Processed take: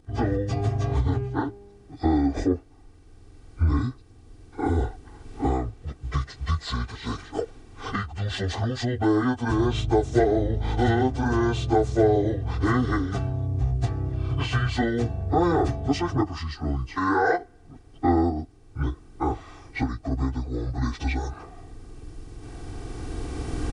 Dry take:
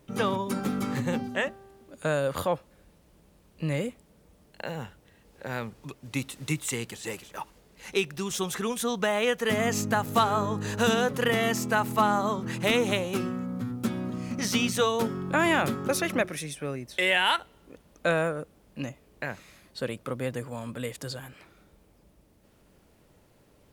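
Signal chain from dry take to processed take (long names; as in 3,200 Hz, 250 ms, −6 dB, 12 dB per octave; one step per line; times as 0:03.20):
phase-vocoder pitch shift without resampling −11.5 semitones
camcorder AGC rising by 8.5 dB per second
tilt shelving filter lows +4 dB, about 1,100 Hz
comb filter 2.6 ms, depth 73%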